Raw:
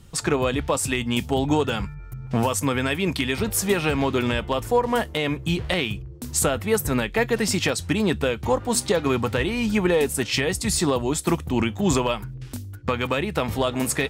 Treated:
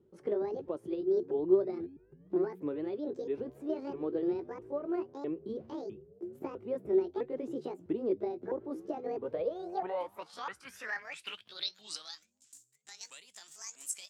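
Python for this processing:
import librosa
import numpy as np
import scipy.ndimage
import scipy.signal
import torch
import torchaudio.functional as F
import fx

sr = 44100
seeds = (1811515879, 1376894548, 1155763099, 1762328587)

y = fx.pitch_ramps(x, sr, semitones=11.5, every_ms=655)
y = fx.filter_sweep_bandpass(y, sr, from_hz=380.0, to_hz=7400.0, start_s=9.11, end_s=12.39, q=6.0)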